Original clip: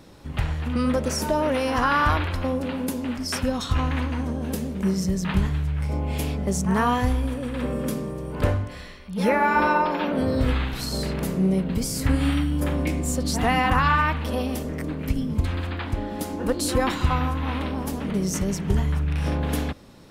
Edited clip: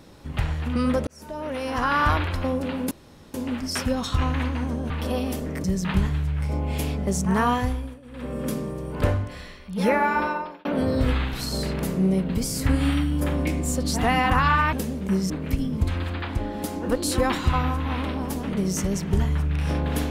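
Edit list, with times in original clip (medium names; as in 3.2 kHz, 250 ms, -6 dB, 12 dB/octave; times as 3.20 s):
1.07–2.07 s: fade in
2.91 s: insert room tone 0.43 s
4.47–5.04 s: swap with 14.13–14.87 s
6.91–7.93 s: dip -18.5 dB, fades 0.50 s
9.35–10.05 s: fade out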